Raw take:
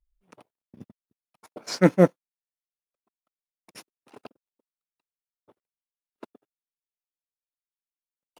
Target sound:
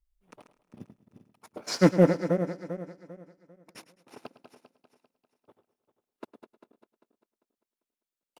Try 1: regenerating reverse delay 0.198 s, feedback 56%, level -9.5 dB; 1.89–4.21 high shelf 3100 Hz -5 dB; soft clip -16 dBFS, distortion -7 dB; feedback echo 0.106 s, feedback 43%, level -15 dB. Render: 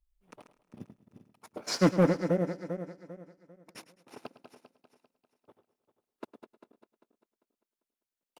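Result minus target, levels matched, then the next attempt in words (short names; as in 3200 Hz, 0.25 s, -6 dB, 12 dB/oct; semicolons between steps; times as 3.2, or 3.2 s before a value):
soft clip: distortion +9 dB
regenerating reverse delay 0.198 s, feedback 56%, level -9.5 dB; 1.89–4.21 high shelf 3100 Hz -5 dB; soft clip -8 dBFS, distortion -16 dB; feedback echo 0.106 s, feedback 43%, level -15 dB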